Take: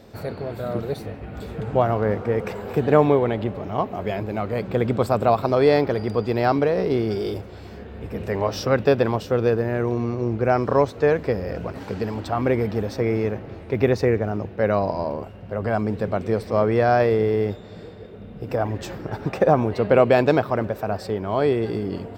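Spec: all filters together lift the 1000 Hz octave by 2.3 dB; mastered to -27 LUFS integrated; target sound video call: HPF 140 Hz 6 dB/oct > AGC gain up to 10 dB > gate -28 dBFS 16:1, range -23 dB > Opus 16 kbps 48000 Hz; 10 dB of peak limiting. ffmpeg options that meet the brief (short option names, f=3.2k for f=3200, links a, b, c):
-af "equalizer=f=1k:t=o:g=3.5,alimiter=limit=-10.5dB:level=0:latency=1,highpass=f=140:p=1,dynaudnorm=m=10dB,agate=range=-23dB:threshold=-28dB:ratio=16,volume=-6dB" -ar 48000 -c:a libopus -b:a 16k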